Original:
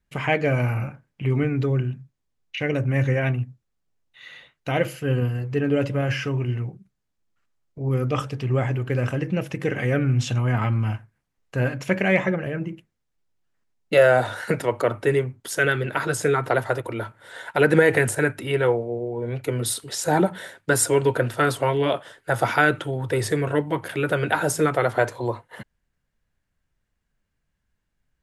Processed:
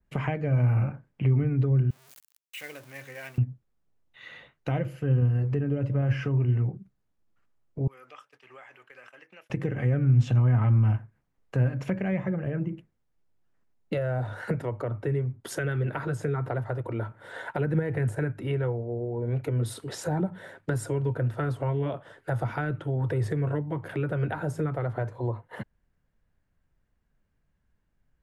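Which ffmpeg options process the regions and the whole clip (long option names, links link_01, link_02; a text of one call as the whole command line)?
ffmpeg -i in.wav -filter_complex "[0:a]asettb=1/sr,asplit=3[link_01][link_02][link_03];[link_01]atrim=end=1.904[link_04];[link_02]atrim=start=1.9:end=3.38,asetpts=PTS-STARTPTS,afade=type=in:duration=0.004:curve=qsin,afade=type=out:start_time=1.476:duration=0.004:curve=qsin,aeval=exprs='val(0)+0.5*0.0316*sgn(val(0))':channel_layout=same,aderivative[link_05];[link_03]atrim=start=3.376[link_06];[link_04][link_05]acrossfade=duration=0.004:curve1=hsin:curve2=qsin[link_07];[link_07][link_06]acrossfade=duration=0.004:curve1=qsin:curve2=hsin,asettb=1/sr,asplit=3[link_08][link_09][link_10];[link_08]atrim=end=7.874[link_11];[link_09]atrim=start=7.87:end=9.5,asetpts=PTS-STARTPTS,afade=type=in:duration=0.004:curve=qsin,afade=type=out:start_time=1.626:duration=0.004:curve=qsin,agate=range=-33dB:threshold=-24dB:ratio=3:release=100:detection=peak,highpass=1400,acompressor=threshold=-51dB:ratio=2.5:attack=3.2:release=140:knee=1:detection=peak[link_12];[link_10]atrim=start=9.496[link_13];[link_11][link_12]acrossfade=duration=0.004:curve1=hsin:curve2=qsin[link_14];[link_14][link_13]acrossfade=duration=0.004:curve1=qsin:curve2=hsin,highshelf=frequency=2100:gain=-11.5,acrossover=split=150[link_15][link_16];[link_16]acompressor=threshold=-34dB:ratio=6[link_17];[link_15][link_17]amix=inputs=2:normalize=0,adynamicequalizer=threshold=0.00178:dfrequency=2700:dqfactor=0.7:tfrequency=2700:tqfactor=0.7:attack=5:release=100:ratio=0.375:range=2:mode=cutabove:tftype=highshelf,volume=3.5dB" out.wav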